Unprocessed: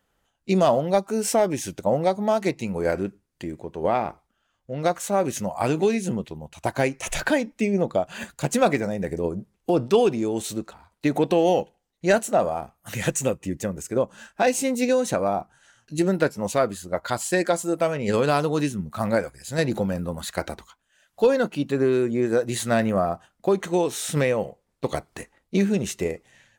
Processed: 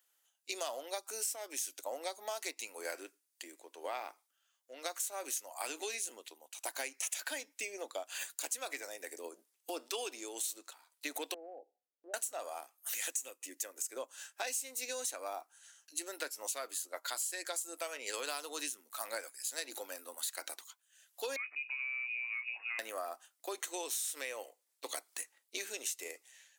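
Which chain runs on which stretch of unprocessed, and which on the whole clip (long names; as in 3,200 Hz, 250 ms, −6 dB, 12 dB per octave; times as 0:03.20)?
0:11.34–0:12.14: Butterworth low-pass 790 Hz 96 dB per octave + downward compressor 2.5 to 1, threshold −33 dBFS
0:21.36–0:22.79: downward compressor 4 to 1, threshold −30 dBFS + voice inversion scrambler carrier 2,700 Hz
whole clip: elliptic high-pass filter 270 Hz, stop band 40 dB; first difference; downward compressor 10 to 1, threshold −39 dBFS; level +4.5 dB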